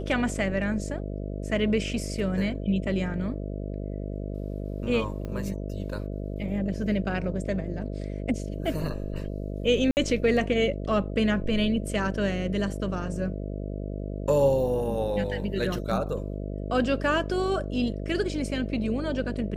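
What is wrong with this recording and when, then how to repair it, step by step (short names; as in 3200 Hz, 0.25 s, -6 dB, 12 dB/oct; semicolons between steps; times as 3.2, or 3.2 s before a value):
buzz 50 Hz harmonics 13 -33 dBFS
5.25 pop -24 dBFS
9.91–9.97 gap 59 ms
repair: de-click; de-hum 50 Hz, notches 13; interpolate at 9.91, 59 ms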